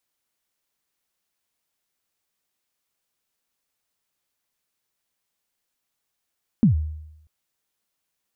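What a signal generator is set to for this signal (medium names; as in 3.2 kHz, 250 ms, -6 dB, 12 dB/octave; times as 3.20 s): kick drum length 0.64 s, from 250 Hz, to 77 Hz, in 117 ms, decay 0.86 s, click off, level -10 dB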